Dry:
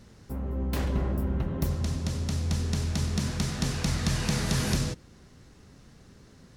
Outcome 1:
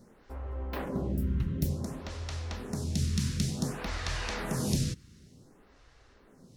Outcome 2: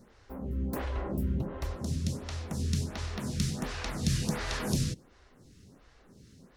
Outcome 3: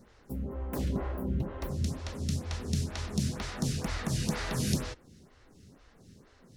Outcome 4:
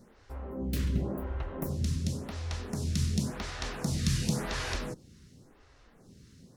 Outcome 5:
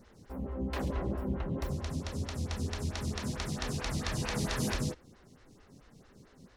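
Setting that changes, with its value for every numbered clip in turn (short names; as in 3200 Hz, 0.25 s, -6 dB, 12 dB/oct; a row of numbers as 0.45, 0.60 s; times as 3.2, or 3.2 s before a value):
photocell phaser, rate: 0.55, 1.4, 2.1, 0.92, 4.5 Hz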